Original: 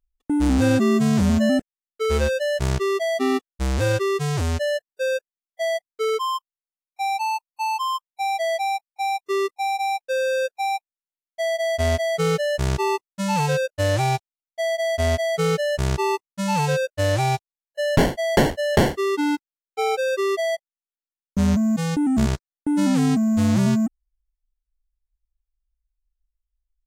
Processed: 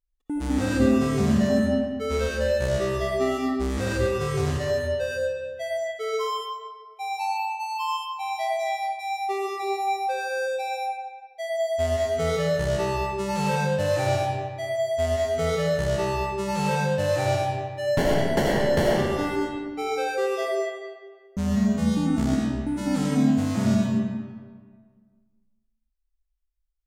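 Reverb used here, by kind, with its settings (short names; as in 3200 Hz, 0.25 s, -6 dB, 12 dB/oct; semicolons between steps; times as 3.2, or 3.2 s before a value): digital reverb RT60 1.7 s, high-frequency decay 0.7×, pre-delay 40 ms, DRR -3.5 dB; gain -7.5 dB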